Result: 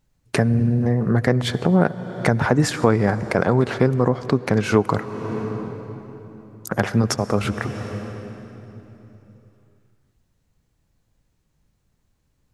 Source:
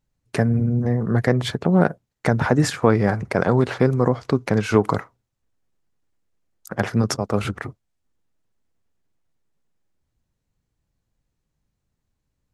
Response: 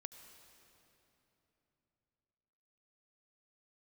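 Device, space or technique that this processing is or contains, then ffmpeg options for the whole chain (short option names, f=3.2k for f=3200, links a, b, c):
ducked reverb: -filter_complex "[0:a]asplit=3[a][b][c];[1:a]atrim=start_sample=2205[d];[b][d]afir=irnorm=-1:irlink=0[e];[c]apad=whole_len=552637[f];[e][f]sidechaincompress=threshold=-26dB:ratio=12:attack=11:release=416,volume=13.5dB[g];[a][g]amix=inputs=2:normalize=0,volume=-3dB"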